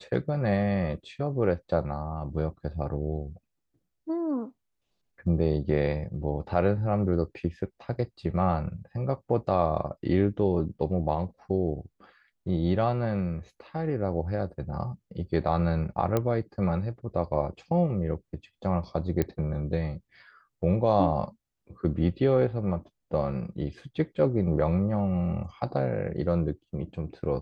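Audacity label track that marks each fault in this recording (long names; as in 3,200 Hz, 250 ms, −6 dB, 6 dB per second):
16.170000	16.170000	click −13 dBFS
19.220000	19.220000	click −14 dBFS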